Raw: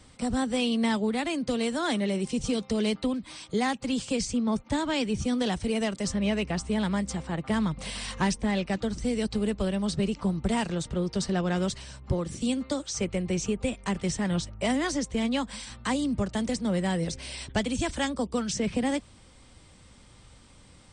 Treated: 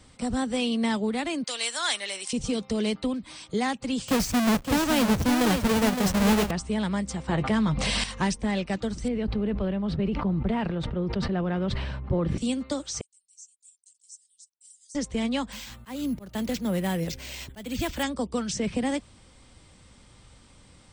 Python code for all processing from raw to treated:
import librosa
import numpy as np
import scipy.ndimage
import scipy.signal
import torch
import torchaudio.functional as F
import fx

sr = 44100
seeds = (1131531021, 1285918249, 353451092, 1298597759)

y = fx.chain(x, sr, fx.highpass(hz=880.0, slope=12),
    fx.high_shelf(hz=2200.0, db=10.5), at=(1.44, 2.33))
y = fx.chain(y, sr, fx.halfwave_hold(),
    fx.echo_single(ms=564, db=-7.0), at=(4.08, 6.51))
y = fx.chain(y, sr, fx.lowpass(hz=7500.0, slope=12),
    fx.doubler(ms=14.0, db=-10.0),
    fx.env_flatten(amount_pct=70), at=(7.28, 8.04))
y = fx.chain(y, sr, fx.air_absorb(metres=410.0),
    fx.sustainer(db_per_s=23.0), at=(9.08, 12.38))
y = fx.chain(y, sr, fx.cheby2_highpass(hz=1400.0, order=4, stop_db=80),
    fx.air_absorb(metres=53.0), at=(13.01, 14.95))
y = fx.chain(y, sr, fx.resample_bad(factor=4, down='none', up='hold'),
    fx.auto_swell(attack_ms=227.0), at=(15.52, 18.03))